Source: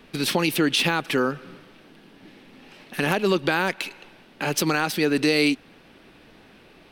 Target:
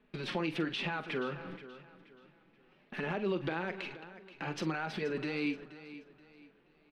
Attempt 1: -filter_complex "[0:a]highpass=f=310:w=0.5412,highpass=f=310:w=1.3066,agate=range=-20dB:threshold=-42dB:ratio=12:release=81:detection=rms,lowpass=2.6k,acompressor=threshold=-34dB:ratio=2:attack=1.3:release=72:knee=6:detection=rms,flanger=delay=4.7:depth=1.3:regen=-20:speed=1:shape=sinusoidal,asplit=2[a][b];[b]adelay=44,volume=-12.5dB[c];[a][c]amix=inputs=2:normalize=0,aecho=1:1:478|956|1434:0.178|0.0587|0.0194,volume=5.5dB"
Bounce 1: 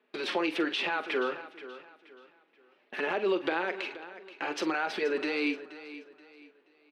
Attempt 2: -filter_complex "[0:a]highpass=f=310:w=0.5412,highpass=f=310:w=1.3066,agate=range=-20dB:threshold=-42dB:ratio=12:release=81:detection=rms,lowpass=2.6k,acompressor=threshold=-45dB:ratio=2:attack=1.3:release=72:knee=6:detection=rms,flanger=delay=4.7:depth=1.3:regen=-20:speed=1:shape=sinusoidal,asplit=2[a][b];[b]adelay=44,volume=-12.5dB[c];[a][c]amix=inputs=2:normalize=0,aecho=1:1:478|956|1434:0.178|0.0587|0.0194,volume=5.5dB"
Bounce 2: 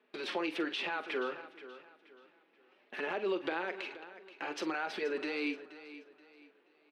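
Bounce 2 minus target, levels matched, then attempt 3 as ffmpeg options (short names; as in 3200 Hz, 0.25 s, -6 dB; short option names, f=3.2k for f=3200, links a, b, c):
250 Hz band -2.5 dB
-filter_complex "[0:a]agate=range=-20dB:threshold=-42dB:ratio=12:release=81:detection=rms,lowpass=2.6k,acompressor=threshold=-45dB:ratio=2:attack=1.3:release=72:knee=6:detection=rms,flanger=delay=4.7:depth=1.3:regen=-20:speed=1:shape=sinusoidal,asplit=2[a][b];[b]adelay=44,volume=-12.5dB[c];[a][c]amix=inputs=2:normalize=0,aecho=1:1:478|956|1434:0.178|0.0587|0.0194,volume=5.5dB"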